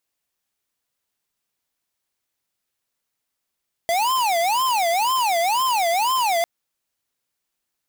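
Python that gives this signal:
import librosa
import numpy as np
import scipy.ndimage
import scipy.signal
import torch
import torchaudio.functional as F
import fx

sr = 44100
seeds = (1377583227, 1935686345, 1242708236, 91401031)

y = fx.siren(sr, length_s=2.55, kind='wail', low_hz=669.0, high_hz=1050.0, per_s=2.0, wave='square', level_db=-20.0)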